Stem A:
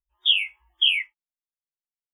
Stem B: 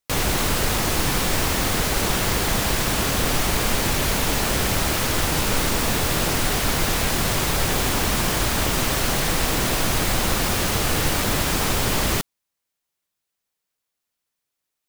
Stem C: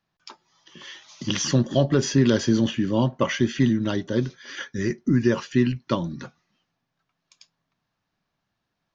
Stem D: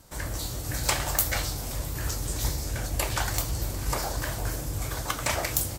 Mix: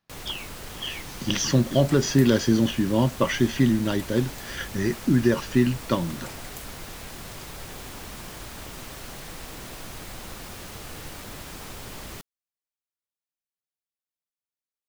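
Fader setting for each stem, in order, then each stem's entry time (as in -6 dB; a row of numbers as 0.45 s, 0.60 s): -15.0 dB, -17.5 dB, 0.0 dB, -17.0 dB; 0.00 s, 0.00 s, 0.00 s, 1.00 s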